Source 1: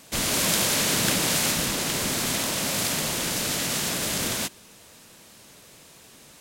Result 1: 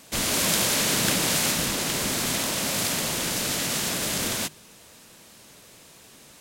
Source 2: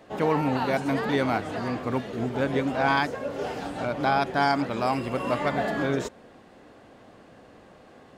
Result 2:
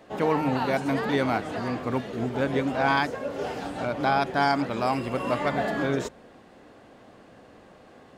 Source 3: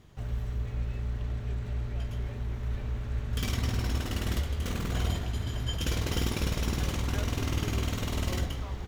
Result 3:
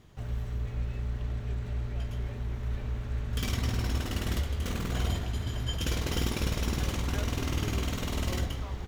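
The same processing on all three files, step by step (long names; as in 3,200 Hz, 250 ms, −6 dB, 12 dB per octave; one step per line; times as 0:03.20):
hum removal 50.76 Hz, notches 3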